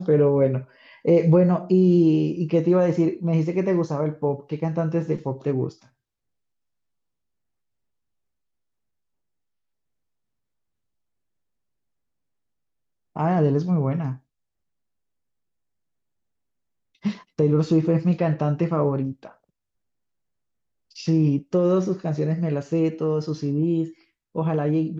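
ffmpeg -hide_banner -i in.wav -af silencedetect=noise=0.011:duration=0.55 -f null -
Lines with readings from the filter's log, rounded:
silence_start: 5.73
silence_end: 13.16 | silence_duration: 7.43
silence_start: 14.17
silence_end: 17.04 | silence_duration: 2.88
silence_start: 19.32
silence_end: 20.96 | silence_duration: 1.64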